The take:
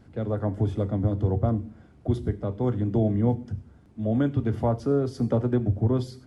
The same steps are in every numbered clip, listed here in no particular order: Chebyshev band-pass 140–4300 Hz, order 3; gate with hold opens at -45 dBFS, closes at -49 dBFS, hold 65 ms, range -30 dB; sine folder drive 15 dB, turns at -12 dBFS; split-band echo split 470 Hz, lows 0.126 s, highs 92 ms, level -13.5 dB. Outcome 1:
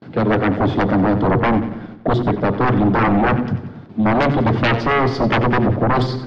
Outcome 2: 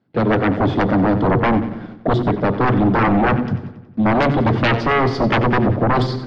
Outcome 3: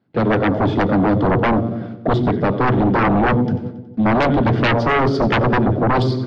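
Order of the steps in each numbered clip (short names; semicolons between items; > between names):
gate with hold > Chebyshev band-pass > sine folder > split-band echo; Chebyshev band-pass > gate with hold > sine folder > split-band echo; Chebyshev band-pass > gate with hold > split-band echo > sine folder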